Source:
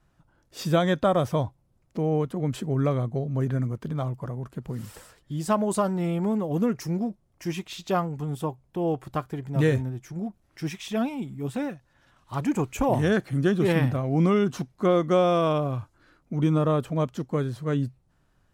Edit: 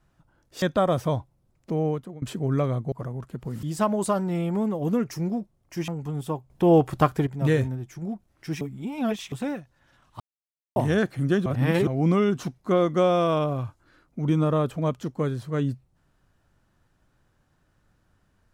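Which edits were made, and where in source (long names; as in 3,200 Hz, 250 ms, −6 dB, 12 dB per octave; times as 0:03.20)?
0:00.62–0:00.89: remove
0:02.10–0:02.49: fade out, to −23.5 dB
0:03.19–0:04.15: remove
0:04.86–0:05.32: remove
0:07.57–0:08.02: remove
0:08.64–0:09.41: clip gain +9 dB
0:10.75–0:11.46: reverse
0:12.34–0:12.90: silence
0:13.60–0:14.01: reverse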